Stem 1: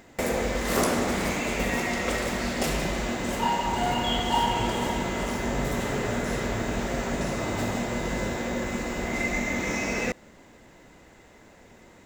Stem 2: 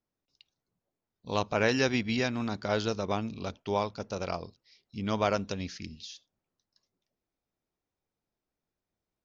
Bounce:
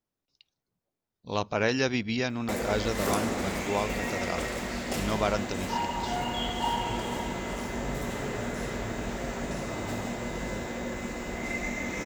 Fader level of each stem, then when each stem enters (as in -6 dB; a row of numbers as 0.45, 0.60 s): -5.0, 0.0 dB; 2.30, 0.00 s